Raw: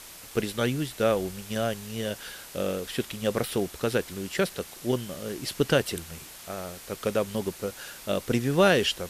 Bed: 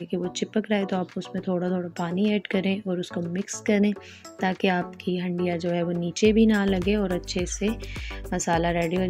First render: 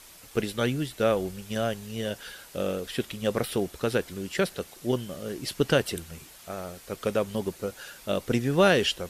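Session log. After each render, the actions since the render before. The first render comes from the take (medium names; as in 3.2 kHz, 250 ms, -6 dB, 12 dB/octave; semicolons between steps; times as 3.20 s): noise reduction 6 dB, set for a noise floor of -46 dBFS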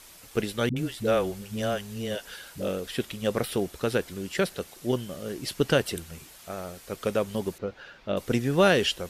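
0.69–2.68 s: phase dispersion highs, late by 72 ms, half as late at 350 Hz; 7.58–8.17 s: distance through air 240 m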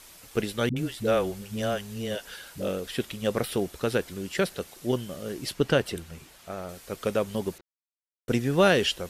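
5.52–6.69 s: treble shelf 5.1 kHz -7 dB; 7.61–8.28 s: mute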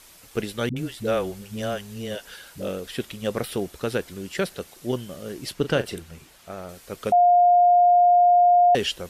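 5.54–6.01 s: doubling 39 ms -11.5 dB; 7.12–8.75 s: bleep 708 Hz -12.5 dBFS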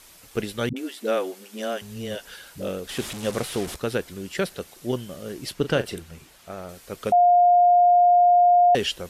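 0.73–1.82 s: steep high-pass 220 Hz 72 dB/octave; 2.89–3.76 s: one-bit delta coder 64 kbps, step -28 dBFS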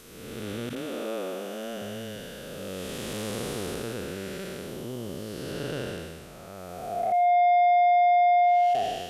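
spectral blur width 463 ms; saturation -17 dBFS, distortion -15 dB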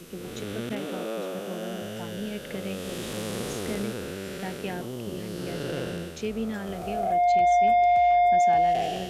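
add bed -12 dB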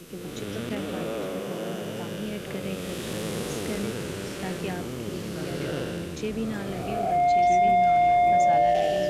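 ever faster or slower copies 91 ms, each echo -3 st, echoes 3, each echo -6 dB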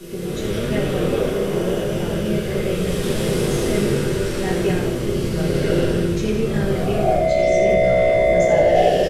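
frequency-shifting echo 84 ms, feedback 50%, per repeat -64 Hz, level -7 dB; simulated room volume 41 m³, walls mixed, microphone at 1.3 m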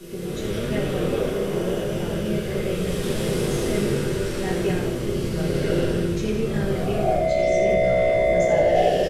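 trim -3.5 dB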